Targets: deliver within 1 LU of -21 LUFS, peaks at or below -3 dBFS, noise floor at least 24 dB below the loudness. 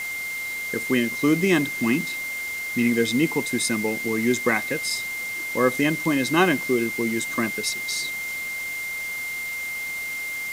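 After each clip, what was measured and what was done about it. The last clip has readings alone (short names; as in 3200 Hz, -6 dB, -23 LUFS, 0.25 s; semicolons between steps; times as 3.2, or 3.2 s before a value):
steady tone 2100 Hz; tone level -28 dBFS; noise floor -31 dBFS; noise floor target -48 dBFS; loudness -24.0 LUFS; peak -5.0 dBFS; loudness target -21.0 LUFS
-> notch 2100 Hz, Q 30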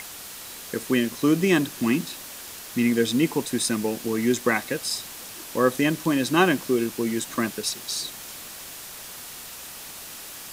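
steady tone none; noise floor -40 dBFS; noise floor target -48 dBFS
-> denoiser 8 dB, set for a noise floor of -40 dBFS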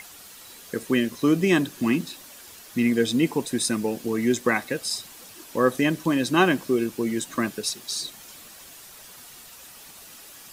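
noise floor -46 dBFS; noise floor target -49 dBFS
-> denoiser 6 dB, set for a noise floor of -46 dBFS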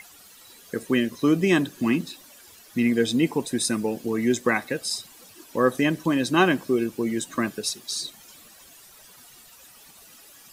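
noise floor -50 dBFS; loudness -24.5 LUFS; peak -5.5 dBFS; loudness target -21.0 LUFS
-> gain +3.5 dB; limiter -3 dBFS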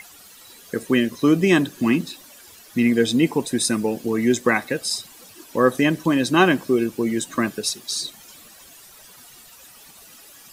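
loudness -21.0 LUFS; peak -3.0 dBFS; noise floor -47 dBFS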